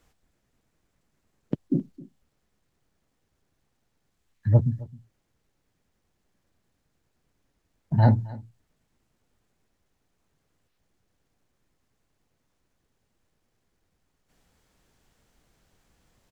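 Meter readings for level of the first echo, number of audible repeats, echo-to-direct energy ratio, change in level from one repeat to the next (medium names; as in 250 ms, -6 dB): -20.5 dB, 1, -20.5 dB, no regular repeats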